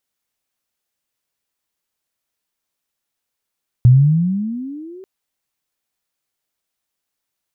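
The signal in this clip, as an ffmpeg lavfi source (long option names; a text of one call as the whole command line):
ffmpeg -f lavfi -i "aevalsrc='pow(10,(-4-30*t/1.19)/20)*sin(2*PI*119*1.19/(20.5*log(2)/12)*(exp(20.5*log(2)/12*t/1.19)-1))':duration=1.19:sample_rate=44100" out.wav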